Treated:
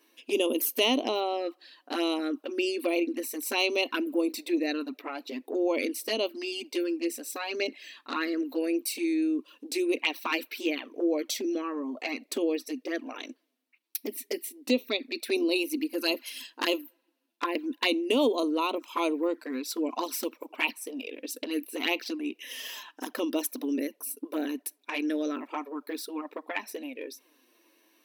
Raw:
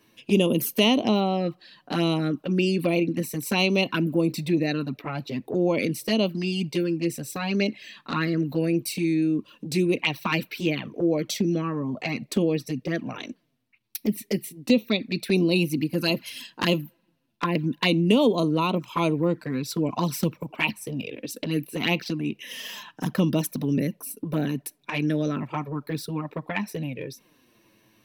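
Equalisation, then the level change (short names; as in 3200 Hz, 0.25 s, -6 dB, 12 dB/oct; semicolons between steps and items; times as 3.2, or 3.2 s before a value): brick-wall FIR high-pass 240 Hz; high shelf 6500 Hz +4.5 dB; -3.5 dB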